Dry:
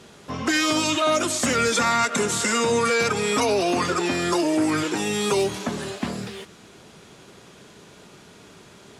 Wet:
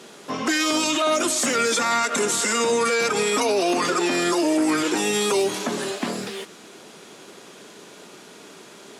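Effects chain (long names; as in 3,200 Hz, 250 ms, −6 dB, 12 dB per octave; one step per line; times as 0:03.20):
Chebyshev high-pass filter 280 Hz, order 2
high-shelf EQ 6,600 Hz +4 dB
brickwall limiter −17.5 dBFS, peak gain reduction 6.5 dB
level +4.5 dB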